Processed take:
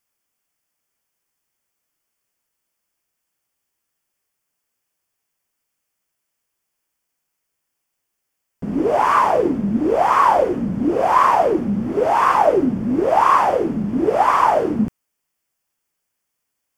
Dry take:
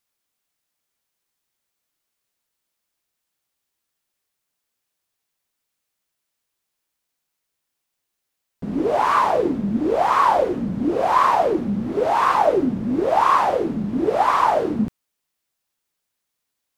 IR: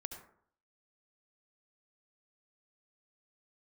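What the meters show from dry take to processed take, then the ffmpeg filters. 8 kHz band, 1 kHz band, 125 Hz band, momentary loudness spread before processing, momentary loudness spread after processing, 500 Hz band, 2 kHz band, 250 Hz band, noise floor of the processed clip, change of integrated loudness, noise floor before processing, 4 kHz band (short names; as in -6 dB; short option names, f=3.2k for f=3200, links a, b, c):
n/a, +2.5 dB, +2.5 dB, 7 LU, 7 LU, +2.5 dB, +2.5 dB, +2.5 dB, -78 dBFS, +2.5 dB, -80 dBFS, -1.0 dB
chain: -af "equalizer=f=3.9k:t=o:w=0.24:g=-14.5,volume=2.5dB"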